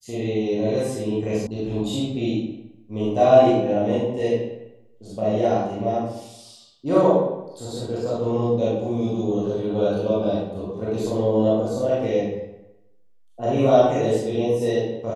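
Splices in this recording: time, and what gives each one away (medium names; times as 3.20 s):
1.47 s: sound stops dead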